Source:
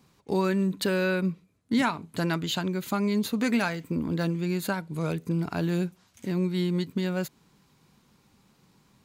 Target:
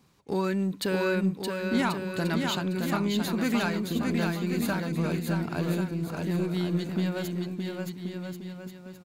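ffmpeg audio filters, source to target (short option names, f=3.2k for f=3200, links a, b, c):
-filter_complex "[0:a]asplit=2[a][b];[b]asoftclip=type=hard:threshold=-27dB,volume=-9dB[c];[a][c]amix=inputs=2:normalize=0,aecho=1:1:620|1085|1434|1695|1891:0.631|0.398|0.251|0.158|0.1,volume=-4dB"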